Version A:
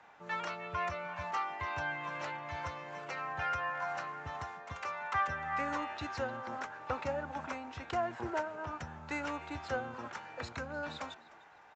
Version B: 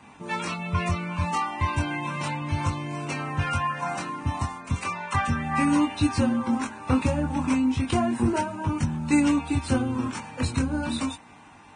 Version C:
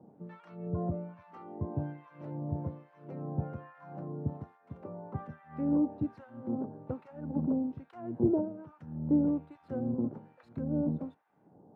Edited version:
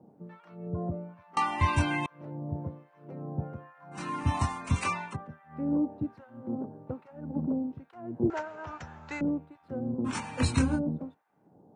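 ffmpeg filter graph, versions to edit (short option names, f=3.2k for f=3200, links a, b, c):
-filter_complex "[1:a]asplit=3[a][b][c];[2:a]asplit=5[d][e][f][g][h];[d]atrim=end=1.372[i];[a]atrim=start=1.368:end=2.062[j];[e]atrim=start=2.058:end=4.15[k];[b]atrim=start=3.91:end=5.17[l];[f]atrim=start=4.93:end=8.302[m];[0:a]atrim=start=8.298:end=9.212[n];[g]atrim=start=9.208:end=10.1[o];[c]atrim=start=10.04:end=10.8[p];[h]atrim=start=10.74[q];[i][j]acrossfade=d=0.004:c1=hsin:c2=hsin[r];[r][k]acrossfade=d=0.004:c1=hsin:c2=hsin[s];[s][l]acrossfade=d=0.24:c1=tri:c2=tri[t];[t][m]acrossfade=d=0.24:c1=tri:c2=tri[u];[u][n]acrossfade=d=0.004:c1=hsin:c2=hsin[v];[v][o]acrossfade=d=0.004:c1=hsin:c2=hsin[w];[w][p]acrossfade=d=0.06:c1=tri:c2=tri[x];[x][q]acrossfade=d=0.06:c1=tri:c2=tri"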